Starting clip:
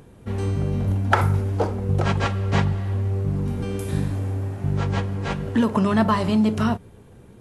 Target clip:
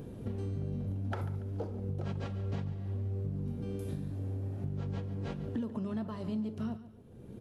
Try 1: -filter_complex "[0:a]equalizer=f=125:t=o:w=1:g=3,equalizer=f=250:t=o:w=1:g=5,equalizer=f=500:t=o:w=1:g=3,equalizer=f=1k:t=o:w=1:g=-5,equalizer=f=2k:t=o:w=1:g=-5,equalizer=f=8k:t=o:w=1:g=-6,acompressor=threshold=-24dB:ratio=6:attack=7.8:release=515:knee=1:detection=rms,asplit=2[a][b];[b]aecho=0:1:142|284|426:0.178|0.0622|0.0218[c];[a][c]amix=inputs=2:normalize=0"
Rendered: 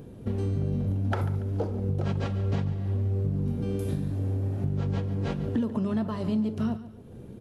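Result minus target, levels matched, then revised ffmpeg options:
compressor: peak gain reduction -8.5 dB
-filter_complex "[0:a]equalizer=f=125:t=o:w=1:g=3,equalizer=f=250:t=o:w=1:g=5,equalizer=f=500:t=o:w=1:g=3,equalizer=f=1k:t=o:w=1:g=-5,equalizer=f=2k:t=o:w=1:g=-5,equalizer=f=8k:t=o:w=1:g=-6,acompressor=threshold=-34dB:ratio=6:attack=7.8:release=515:knee=1:detection=rms,asplit=2[a][b];[b]aecho=0:1:142|284|426:0.178|0.0622|0.0218[c];[a][c]amix=inputs=2:normalize=0"

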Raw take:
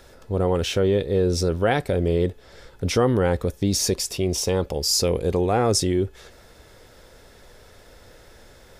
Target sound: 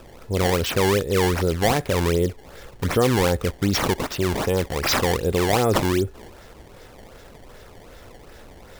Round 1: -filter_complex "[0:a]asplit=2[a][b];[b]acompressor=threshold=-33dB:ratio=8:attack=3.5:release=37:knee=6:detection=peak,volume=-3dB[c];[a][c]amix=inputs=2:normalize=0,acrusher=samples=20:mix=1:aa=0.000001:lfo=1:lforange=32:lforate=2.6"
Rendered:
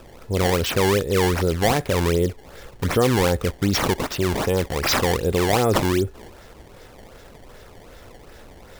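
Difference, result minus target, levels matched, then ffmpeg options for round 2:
compressor: peak gain reduction -6.5 dB
-filter_complex "[0:a]asplit=2[a][b];[b]acompressor=threshold=-40.5dB:ratio=8:attack=3.5:release=37:knee=6:detection=peak,volume=-3dB[c];[a][c]amix=inputs=2:normalize=0,acrusher=samples=20:mix=1:aa=0.000001:lfo=1:lforange=32:lforate=2.6"

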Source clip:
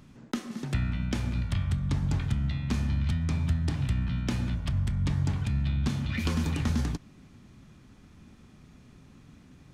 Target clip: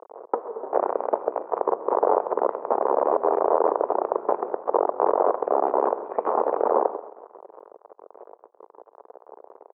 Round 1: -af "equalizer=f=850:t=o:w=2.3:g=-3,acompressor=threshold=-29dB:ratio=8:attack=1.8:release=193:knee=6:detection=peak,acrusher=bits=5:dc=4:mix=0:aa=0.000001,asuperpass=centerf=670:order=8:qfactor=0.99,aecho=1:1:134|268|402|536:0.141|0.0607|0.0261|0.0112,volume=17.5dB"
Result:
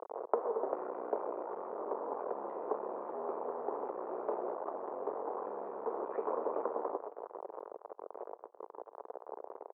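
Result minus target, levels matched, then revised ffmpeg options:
compressor: peak gain reduction +10.5 dB
-af "equalizer=f=850:t=o:w=2.3:g=-3,acrusher=bits=5:dc=4:mix=0:aa=0.000001,asuperpass=centerf=670:order=8:qfactor=0.99,aecho=1:1:134|268|402|536:0.141|0.0607|0.0261|0.0112,volume=17.5dB"

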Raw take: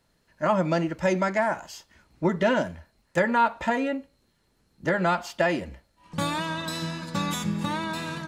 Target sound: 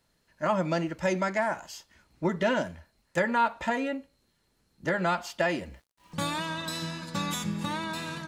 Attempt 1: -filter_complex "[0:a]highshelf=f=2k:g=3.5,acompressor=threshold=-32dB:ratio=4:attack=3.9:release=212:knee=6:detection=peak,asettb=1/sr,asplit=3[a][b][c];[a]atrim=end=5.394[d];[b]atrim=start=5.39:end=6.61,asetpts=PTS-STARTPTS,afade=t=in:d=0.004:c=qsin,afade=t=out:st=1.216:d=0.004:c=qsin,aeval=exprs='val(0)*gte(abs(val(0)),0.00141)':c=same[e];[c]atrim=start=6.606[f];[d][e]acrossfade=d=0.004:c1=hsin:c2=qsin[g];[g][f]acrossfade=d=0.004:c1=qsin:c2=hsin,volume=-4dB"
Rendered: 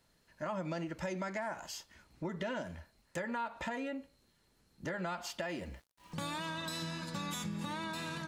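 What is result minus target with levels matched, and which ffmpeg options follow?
compressor: peak gain reduction +14.5 dB
-filter_complex "[0:a]highshelf=f=2k:g=3.5,asettb=1/sr,asplit=3[a][b][c];[a]atrim=end=5.394[d];[b]atrim=start=5.39:end=6.61,asetpts=PTS-STARTPTS,afade=t=in:d=0.004:c=qsin,afade=t=out:st=1.216:d=0.004:c=qsin,aeval=exprs='val(0)*gte(abs(val(0)),0.00141)':c=same[e];[c]atrim=start=6.606[f];[d][e]acrossfade=d=0.004:c1=hsin:c2=qsin[g];[g][f]acrossfade=d=0.004:c1=qsin:c2=hsin,volume=-4dB"

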